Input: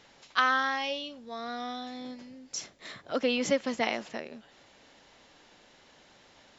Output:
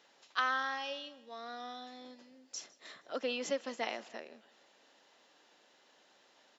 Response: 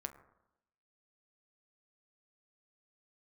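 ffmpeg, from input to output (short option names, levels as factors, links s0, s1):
-af "highpass=310,bandreject=f=2200:w=15,aecho=1:1:157|314|471:0.075|0.0375|0.0187,volume=0.447"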